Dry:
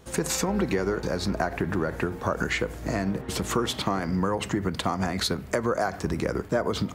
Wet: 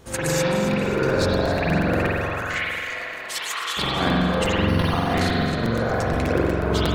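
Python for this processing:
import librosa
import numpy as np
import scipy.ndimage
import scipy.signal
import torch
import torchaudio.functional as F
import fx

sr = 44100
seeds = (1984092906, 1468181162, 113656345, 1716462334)

y = fx.over_compress(x, sr, threshold_db=-29.0, ratio=-0.5)
y = fx.highpass(y, sr, hz=1300.0, slope=12, at=(2.04, 3.77))
y = fx.echo_feedback(y, sr, ms=266, feedback_pct=39, wet_db=-11.0)
y = fx.rev_spring(y, sr, rt60_s=2.3, pass_ms=(44,), chirp_ms=65, drr_db=-9.0)
y = fx.buffer_crackle(y, sr, first_s=0.73, period_s=0.12, block=256, kind='repeat')
y = fx.resample_linear(y, sr, factor=6, at=(4.68, 5.14))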